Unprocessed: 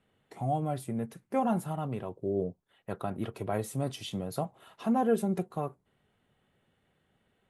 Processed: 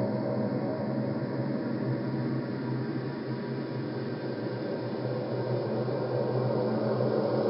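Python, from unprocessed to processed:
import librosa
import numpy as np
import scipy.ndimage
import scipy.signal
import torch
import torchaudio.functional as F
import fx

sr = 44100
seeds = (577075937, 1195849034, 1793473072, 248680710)

y = fx.partial_stretch(x, sr, pct=79)
y = fx.echo_thinned(y, sr, ms=578, feedback_pct=68, hz=460.0, wet_db=-9.5)
y = fx.paulstretch(y, sr, seeds[0], factor=21.0, window_s=0.5, from_s=3.14)
y = y * 10.0 ** (7.0 / 20.0)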